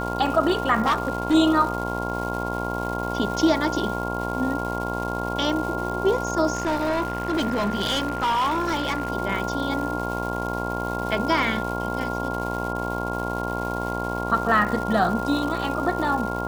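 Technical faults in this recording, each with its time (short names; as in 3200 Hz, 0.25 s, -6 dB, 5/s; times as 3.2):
buzz 60 Hz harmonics 18 -29 dBFS
crackle 410/s -31 dBFS
tone 1400 Hz -30 dBFS
0.85–1.35 clipped -16.5 dBFS
6.55–9.1 clipped -19.5 dBFS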